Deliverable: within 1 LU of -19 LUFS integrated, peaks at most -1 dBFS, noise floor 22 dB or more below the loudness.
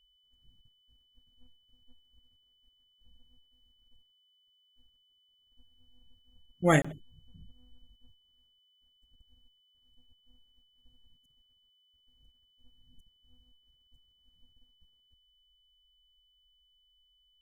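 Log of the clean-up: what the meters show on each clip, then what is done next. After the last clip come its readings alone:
dropouts 1; longest dropout 25 ms; steady tone 3 kHz; tone level -67 dBFS; loudness -28.0 LUFS; peak level -11.0 dBFS; loudness target -19.0 LUFS
-> interpolate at 6.82 s, 25 ms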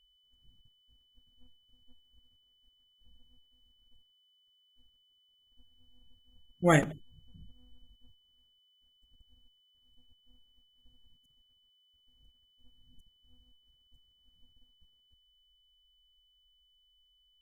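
dropouts 0; steady tone 3 kHz; tone level -67 dBFS
-> band-stop 3 kHz, Q 30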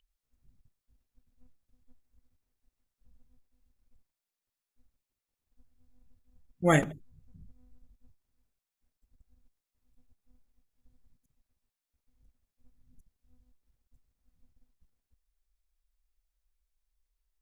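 steady tone not found; loudness -27.5 LUFS; peak level -11.5 dBFS; loudness target -19.0 LUFS
-> trim +8.5 dB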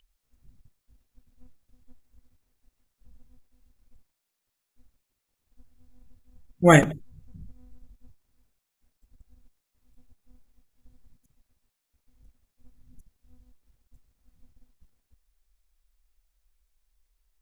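loudness -19.0 LUFS; peak level -3.0 dBFS; noise floor -82 dBFS

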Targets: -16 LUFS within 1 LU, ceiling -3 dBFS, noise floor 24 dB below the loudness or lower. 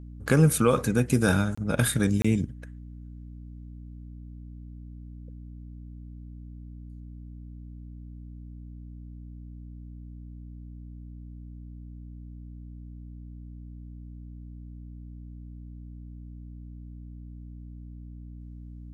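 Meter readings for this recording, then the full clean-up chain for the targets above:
dropouts 2; longest dropout 25 ms; hum 60 Hz; highest harmonic 300 Hz; hum level -40 dBFS; loudness -24.0 LUFS; peak level -8.5 dBFS; loudness target -16.0 LUFS
-> interpolate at 1.55/2.22 s, 25 ms; hum notches 60/120/180/240/300 Hz; trim +8 dB; peak limiter -3 dBFS

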